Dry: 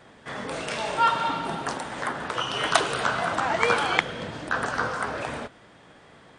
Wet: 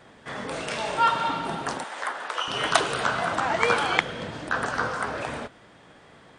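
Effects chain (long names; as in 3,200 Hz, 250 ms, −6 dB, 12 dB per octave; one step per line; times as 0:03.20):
0:01.84–0:02.48: high-pass filter 590 Hz 12 dB per octave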